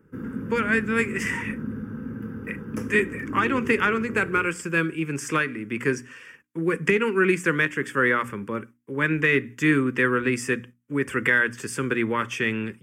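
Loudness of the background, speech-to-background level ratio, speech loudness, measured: -34.0 LUFS, 10.0 dB, -24.0 LUFS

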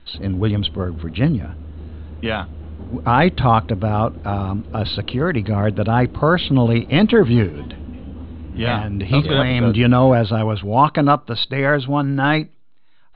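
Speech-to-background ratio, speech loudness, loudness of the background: 17.0 dB, -18.0 LUFS, -35.0 LUFS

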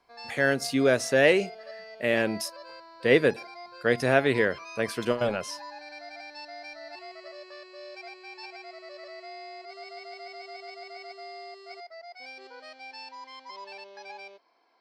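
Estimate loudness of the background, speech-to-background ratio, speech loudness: -43.0 LUFS, 18.0 dB, -25.0 LUFS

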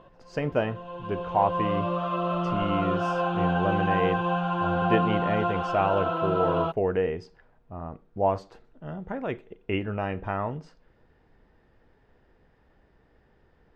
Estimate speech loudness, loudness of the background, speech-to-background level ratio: -30.0 LUFS, -27.5 LUFS, -2.5 dB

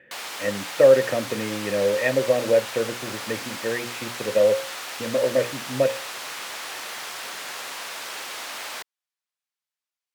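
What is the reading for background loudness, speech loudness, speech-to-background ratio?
-32.5 LUFS, -23.0 LUFS, 9.5 dB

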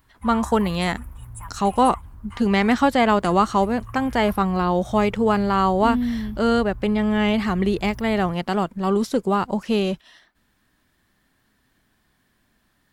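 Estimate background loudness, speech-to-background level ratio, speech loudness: -40.0 LUFS, 19.0 dB, -21.0 LUFS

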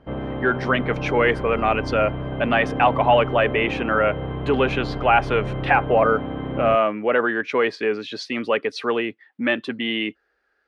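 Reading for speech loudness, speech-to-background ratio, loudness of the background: -21.5 LUFS, 7.5 dB, -29.0 LUFS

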